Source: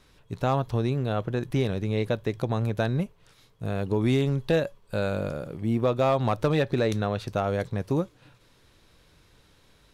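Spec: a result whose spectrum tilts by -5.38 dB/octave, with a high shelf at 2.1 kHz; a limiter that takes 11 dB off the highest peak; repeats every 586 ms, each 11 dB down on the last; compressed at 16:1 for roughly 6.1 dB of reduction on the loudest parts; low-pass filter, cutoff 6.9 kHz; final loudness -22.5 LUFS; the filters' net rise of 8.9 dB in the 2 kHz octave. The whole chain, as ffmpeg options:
-af "lowpass=6900,equalizer=f=2000:t=o:g=8.5,highshelf=f=2100:g=5.5,acompressor=threshold=0.0708:ratio=16,alimiter=level_in=1.12:limit=0.0631:level=0:latency=1,volume=0.891,aecho=1:1:586|1172|1758:0.282|0.0789|0.0221,volume=4.22"

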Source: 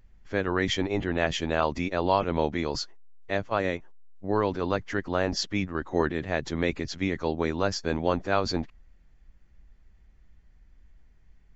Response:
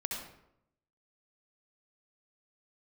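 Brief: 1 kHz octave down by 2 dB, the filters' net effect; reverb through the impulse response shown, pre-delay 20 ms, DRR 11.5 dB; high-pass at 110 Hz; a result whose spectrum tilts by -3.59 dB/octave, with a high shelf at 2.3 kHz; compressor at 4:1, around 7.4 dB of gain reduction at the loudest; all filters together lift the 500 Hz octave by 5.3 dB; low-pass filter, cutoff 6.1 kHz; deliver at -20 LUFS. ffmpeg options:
-filter_complex "[0:a]highpass=110,lowpass=6100,equalizer=f=500:t=o:g=8,equalizer=f=1000:t=o:g=-7,highshelf=f=2300:g=5.5,acompressor=threshold=0.0631:ratio=4,asplit=2[s0][s1];[1:a]atrim=start_sample=2205,adelay=20[s2];[s1][s2]afir=irnorm=-1:irlink=0,volume=0.2[s3];[s0][s3]amix=inputs=2:normalize=0,volume=2.99"

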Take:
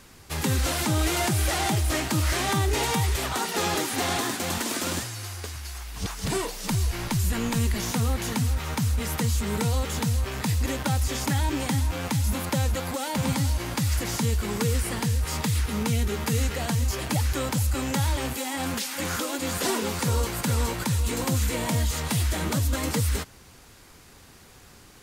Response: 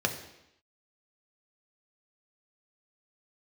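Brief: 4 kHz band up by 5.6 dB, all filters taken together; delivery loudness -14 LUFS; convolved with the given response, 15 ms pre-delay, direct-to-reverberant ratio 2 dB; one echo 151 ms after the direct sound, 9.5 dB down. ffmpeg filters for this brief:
-filter_complex "[0:a]equalizer=f=4000:t=o:g=7,aecho=1:1:151:0.335,asplit=2[s0][s1];[1:a]atrim=start_sample=2205,adelay=15[s2];[s1][s2]afir=irnorm=-1:irlink=0,volume=0.282[s3];[s0][s3]amix=inputs=2:normalize=0,volume=2.66"

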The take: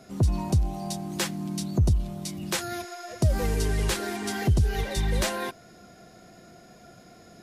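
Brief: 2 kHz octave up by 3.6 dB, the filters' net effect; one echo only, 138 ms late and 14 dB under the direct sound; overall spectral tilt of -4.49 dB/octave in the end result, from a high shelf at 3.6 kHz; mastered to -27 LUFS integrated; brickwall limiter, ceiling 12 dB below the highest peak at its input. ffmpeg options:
-af "equalizer=f=2000:t=o:g=3.5,highshelf=f=3600:g=4,alimiter=limit=0.0668:level=0:latency=1,aecho=1:1:138:0.2,volume=1.88"

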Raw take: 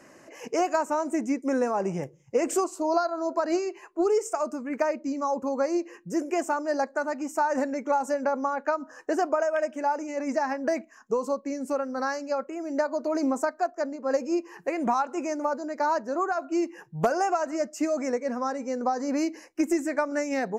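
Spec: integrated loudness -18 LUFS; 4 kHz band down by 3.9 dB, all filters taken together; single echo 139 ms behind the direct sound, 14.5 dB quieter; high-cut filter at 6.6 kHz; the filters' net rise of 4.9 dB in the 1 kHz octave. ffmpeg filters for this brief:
-af "lowpass=6600,equalizer=f=1000:t=o:g=6.5,equalizer=f=4000:t=o:g=-4.5,aecho=1:1:139:0.188,volume=2.37"

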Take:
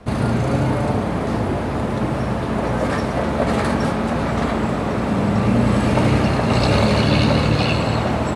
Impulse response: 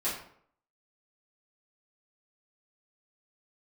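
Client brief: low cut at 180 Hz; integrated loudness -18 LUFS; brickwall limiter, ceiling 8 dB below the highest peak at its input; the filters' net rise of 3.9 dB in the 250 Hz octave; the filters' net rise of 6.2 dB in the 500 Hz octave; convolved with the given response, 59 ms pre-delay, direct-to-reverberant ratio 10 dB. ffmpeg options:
-filter_complex "[0:a]highpass=180,equalizer=f=250:t=o:g=5,equalizer=f=500:t=o:g=6.5,alimiter=limit=0.355:level=0:latency=1,asplit=2[s0][s1];[1:a]atrim=start_sample=2205,adelay=59[s2];[s1][s2]afir=irnorm=-1:irlink=0,volume=0.15[s3];[s0][s3]amix=inputs=2:normalize=0"

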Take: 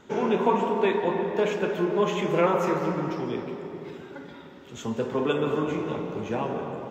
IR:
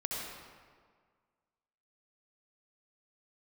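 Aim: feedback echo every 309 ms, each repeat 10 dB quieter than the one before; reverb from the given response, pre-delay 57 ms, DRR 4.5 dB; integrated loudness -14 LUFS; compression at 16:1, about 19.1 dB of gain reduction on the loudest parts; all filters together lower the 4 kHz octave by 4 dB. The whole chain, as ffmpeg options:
-filter_complex "[0:a]equalizer=f=4000:t=o:g=-5.5,acompressor=threshold=0.0141:ratio=16,aecho=1:1:309|618|927|1236:0.316|0.101|0.0324|0.0104,asplit=2[s0][s1];[1:a]atrim=start_sample=2205,adelay=57[s2];[s1][s2]afir=irnorm=-1:irlink=0,volume=0.398[s3];[s0][s3]amix=inputs=2:normalize=0,volume=20"

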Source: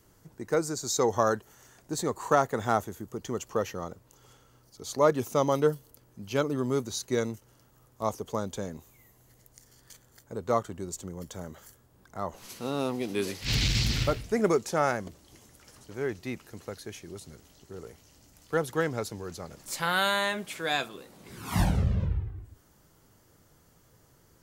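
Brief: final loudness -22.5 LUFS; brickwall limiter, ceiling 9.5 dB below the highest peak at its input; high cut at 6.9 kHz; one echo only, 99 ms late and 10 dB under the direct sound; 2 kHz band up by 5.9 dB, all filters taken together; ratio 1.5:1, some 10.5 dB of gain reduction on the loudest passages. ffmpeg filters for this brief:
-af "lowpass=6900,equalizer=f=2000:t=o:g=8,acompressor=threshold=0.00447:ratio=1.5,alimiter=level_in=1.26:limit=0.0631:level=0:latency=1,volume=0.794,aecho=1:1:99:0.316,volume=7.5"

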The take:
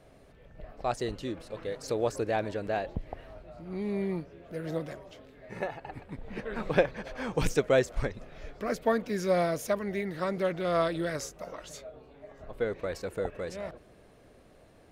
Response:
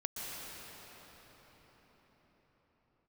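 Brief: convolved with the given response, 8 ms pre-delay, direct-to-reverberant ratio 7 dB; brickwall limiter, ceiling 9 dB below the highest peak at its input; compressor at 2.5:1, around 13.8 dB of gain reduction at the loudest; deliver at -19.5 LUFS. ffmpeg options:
-filter_complex "[0:a]acompressor=threshold=0.01:ratio=2.5,alimiter=level_in=2.51:limit=0.0631:level=0:latency=1,volume=0.398,asplit=2[s0][s1];[1:a]atrim=start_sample=2205,adelay=8[s2];[s1][s2]afir=irnorm=-1:irlink=0,volume=0.335[s3];[s0][s3]amix=inputs=2:normalize=0,volume=15"

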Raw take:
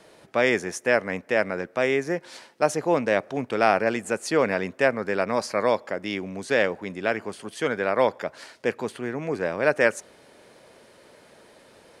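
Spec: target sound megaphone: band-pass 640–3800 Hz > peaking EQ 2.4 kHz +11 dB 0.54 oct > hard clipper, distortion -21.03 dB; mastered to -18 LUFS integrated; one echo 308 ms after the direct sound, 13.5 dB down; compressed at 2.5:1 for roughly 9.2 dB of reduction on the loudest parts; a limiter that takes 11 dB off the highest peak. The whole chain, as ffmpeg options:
-af "acompressor=threshold=0.0355:ratio=2.5,alimiter=level_in=1.06:limit=0.0631:level=0:latency=1,volume=0.944,highpass=640,lowpass=3800,equalizer=f=2400:t=o:w=0.54:g=11,aecho=1:1:308:0.211,asoftclip=type=hard:threshold=0.0562,volume=8.91"

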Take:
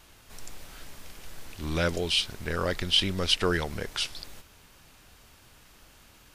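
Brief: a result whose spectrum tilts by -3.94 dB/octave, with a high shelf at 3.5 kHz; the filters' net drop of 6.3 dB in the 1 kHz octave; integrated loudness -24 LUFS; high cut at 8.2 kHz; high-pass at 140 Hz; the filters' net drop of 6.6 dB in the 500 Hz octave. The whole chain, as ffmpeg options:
-af "highpass=140,lowpass=8200,equalizer=f=500:t=o:g=-6.5,equalizer=f=1000:t=o:g=-6,highshelf=f=3500:g=-9,volume=2.66"

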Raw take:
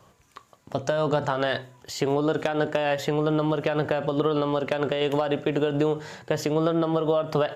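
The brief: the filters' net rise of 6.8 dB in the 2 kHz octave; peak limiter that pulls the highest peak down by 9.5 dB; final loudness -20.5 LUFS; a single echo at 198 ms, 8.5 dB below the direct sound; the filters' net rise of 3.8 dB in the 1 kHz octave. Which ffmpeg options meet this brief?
-af "equalizer=f=1000:t=o:g=3,equalizer=f=2000:t=o:g=8,alimiter=limit=0.168:level=0:latency=1,aecho=1:1:198:0.376,volume=1.88"

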